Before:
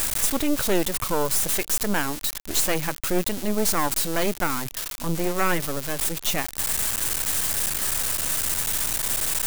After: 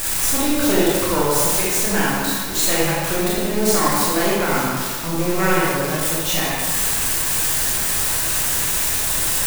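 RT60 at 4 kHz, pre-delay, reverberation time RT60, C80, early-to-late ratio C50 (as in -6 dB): 1.3 s, 21 ms, 1.8 s, -0.5 dB, -3.5 dB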